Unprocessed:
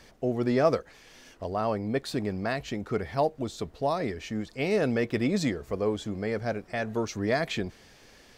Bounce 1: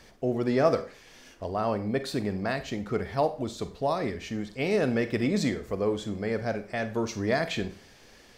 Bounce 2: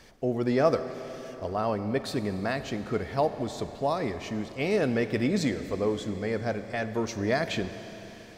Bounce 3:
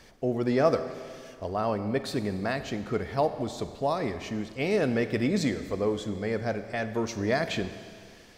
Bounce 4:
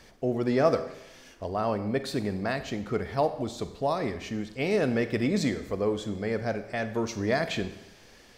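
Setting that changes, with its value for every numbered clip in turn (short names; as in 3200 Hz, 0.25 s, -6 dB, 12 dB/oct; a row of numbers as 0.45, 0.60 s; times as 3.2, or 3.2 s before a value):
Schroeder reverb, RT60: 0.39, 4.2, 2, 0.87 s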